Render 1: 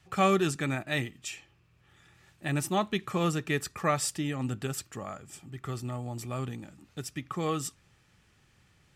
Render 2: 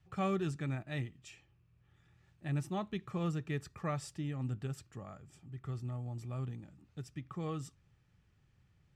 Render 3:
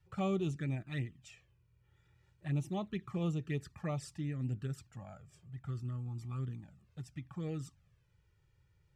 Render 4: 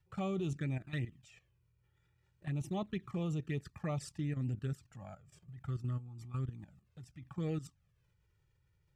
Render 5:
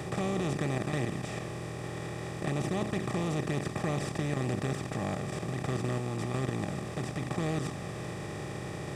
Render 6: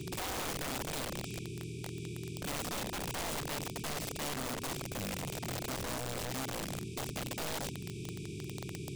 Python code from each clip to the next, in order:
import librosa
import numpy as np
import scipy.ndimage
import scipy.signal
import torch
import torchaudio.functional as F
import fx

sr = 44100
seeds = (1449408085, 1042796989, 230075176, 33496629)

y1 = fx.curve_eq(x, sr, hz=(140.0, 230.0, 5800.0, 13000.0), db=(0, -6, -13, -20))
y1 = y1 * 10.0 ** (-2.5 / 20.0)
y2 = fx.env_flanger(y1, sr, rest_ms=2.2, full_db=-31.5)
y2 = y2 * 10.0 ** (1.0 / 20.0)
y3 = fx.level_steps(y2, sr, step_db=13)
y3 = y3 * 10.0 ** (4.0 / 20.0)
y4 = fx.bin_compress(y3, sr, power=0.2)
y5 = fx.brickwall_bandstop(y4, sr, low_hz=450.0, high_hz=2200.0)
y5 = (np.mod(10.0 ** (30.0 / 20.0) * y5 + 1.0, 2.0) - 1.0) / 10.0 ** (30.0 / 20.0)
y5 = y5 * 10.0 ** (-2.5 / 20.0)